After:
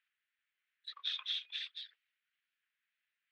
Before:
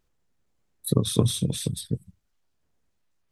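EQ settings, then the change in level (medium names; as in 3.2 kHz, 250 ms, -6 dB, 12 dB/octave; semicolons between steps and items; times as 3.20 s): steep high-pass 1.6 kHz 36 dB/octave; low-pass 3.1 kHz 24 dB/octave; distance through air 87 m; +5.0 dB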